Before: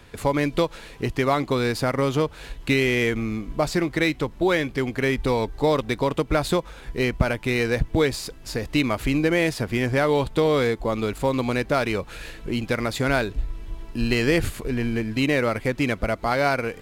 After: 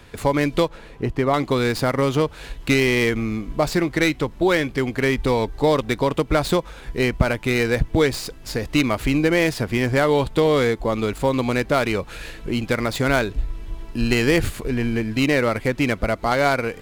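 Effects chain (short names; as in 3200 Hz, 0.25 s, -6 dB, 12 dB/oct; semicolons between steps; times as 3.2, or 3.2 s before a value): tracing distortion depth 0.059 ms; 0.68–1.34 high shelf 2200 Hz -12 dB; gain +2.5 dB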